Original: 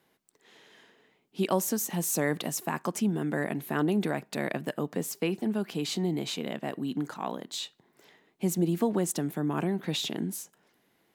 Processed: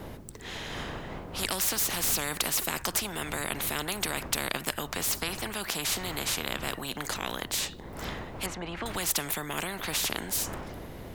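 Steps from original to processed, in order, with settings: wind noise 110 Hz -37 dBFS; 8.46–8.86 LPF 1700 Hz 12 dB/oct; spectral compressor 4:1; gain +3.5 dB

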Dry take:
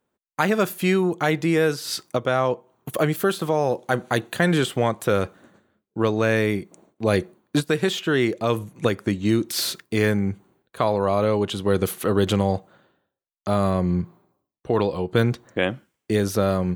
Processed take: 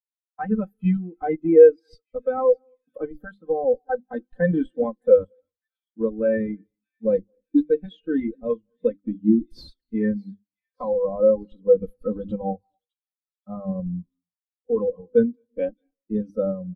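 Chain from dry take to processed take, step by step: notches 50/100/150/200/250/300/350 Hz; comb 3.9 ms, depth 98%; in parallel at -3 dB: Schmitt trigger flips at -15.5 dBFS; on the sum: thin delay 0.608 s, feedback 67%, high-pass 3000 Hz, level -9.5 dB; on a send at -18 dB: reverb RT60 0.60 s, pre-delay 0.192 s; on the sum: spectral expander 2.5:1

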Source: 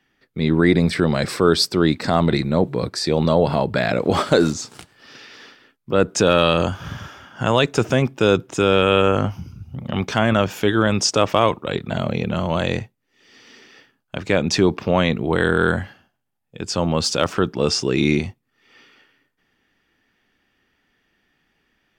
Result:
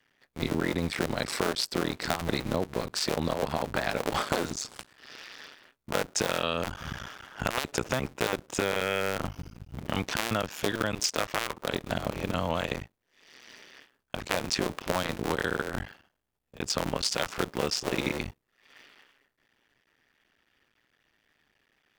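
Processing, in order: cycle switcher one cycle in 2, muted; low shelf 460 Hz -5.5 dB; compressor, threshold -24 dBFS, peak gain reduction 10.5 dB

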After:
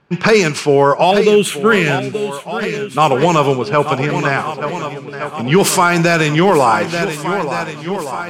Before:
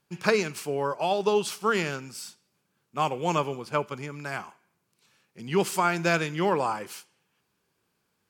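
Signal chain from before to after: low-pass opened by the level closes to 2300 Hz, open at -21 dBFS; 1.11–2.98 fixed phaser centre 2200 Hz, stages 4; in parallel at -10 dB: sine folder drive 7 dB, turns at -5.5 dBFS; on the sum: swung echo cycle 1.466 s, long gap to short 1.5:1, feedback 48%, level -13 dB; maximiser +13 dB; gain -1 dB

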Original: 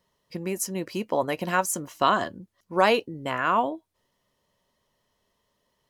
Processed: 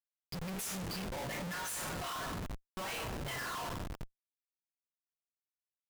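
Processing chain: per-bin expansion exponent 2; passive tone stack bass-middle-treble 10-0-10; compressor 3:1, threshold -45 dBFS, peak gain reduction 13.5 dB; low shelf 270 Hz -5.5 dB; notch 3800 Hz, Q 25; two-slope reverb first 0.48 s, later 3.5 s, from -17 dB, DRR -4.5 dB; Schmitt trigger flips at -47.5 dBFS; gain +6 dB

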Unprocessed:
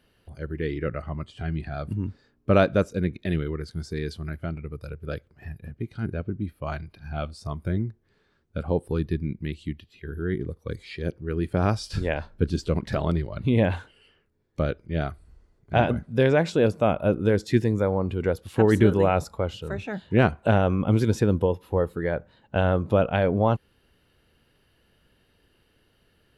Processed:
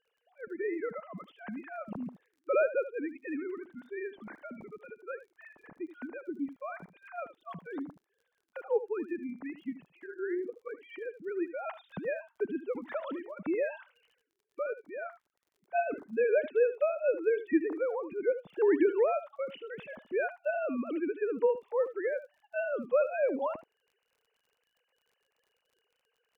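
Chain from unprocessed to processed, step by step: sine-wave speech; echo 76 ms -14 dB; crackle 40/s -49 dBFS; gain -8.5 dB

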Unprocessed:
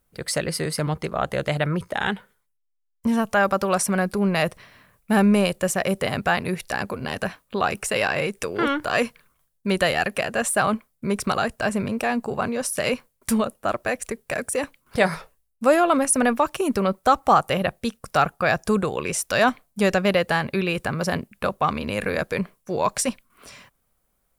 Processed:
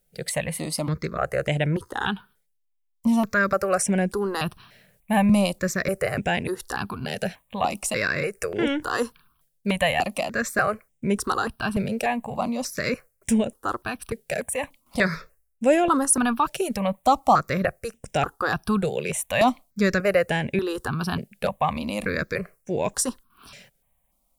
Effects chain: step phaser 3.4 Hz 290–4400 Hz; gain +1.5 dB

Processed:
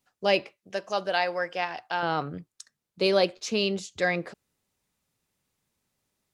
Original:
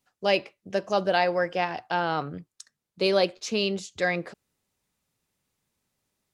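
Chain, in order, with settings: 0.56–2.03 low shelf 470 Hz -11.5 dB

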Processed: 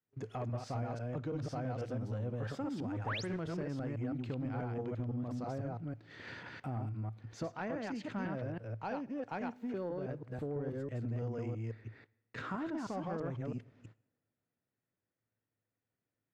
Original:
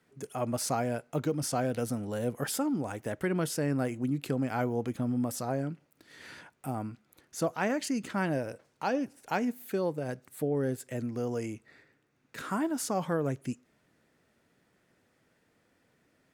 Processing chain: reverse delay 0.165 s, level -1 dB; gate -59 dBFS, range -26 dB; bell 110 Hz +15 dB 0.25 oct; compressor 3:1, threshold -39 dBFS, peak gain reduction 14 dB; 3.06–3.27 painted sound rise 690–11000 Hz -36 dBFS; soft clip -30 dBFS, distortion -20 dB; air absorption 190 m; two-slope reverb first 0.8 s, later 3 s, from -26 dB, DRR 20 dB; 7.71–10.39 three-band expander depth 40%; gain +1.5 dB

